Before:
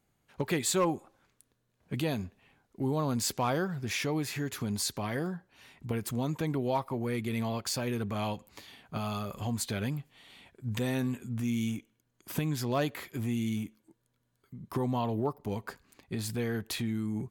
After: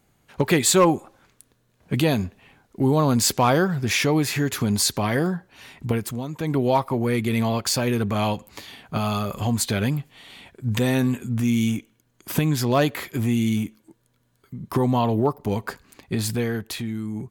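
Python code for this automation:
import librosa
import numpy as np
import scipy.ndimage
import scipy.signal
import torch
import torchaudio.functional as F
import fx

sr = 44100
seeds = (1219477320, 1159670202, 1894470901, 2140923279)

y = fx.gain(x, sr, db=fx.line((5.88, 11.0), (6.29, -0.5), (6.57, 10.0), (16.27, 10.0), (16.74, 3.5)))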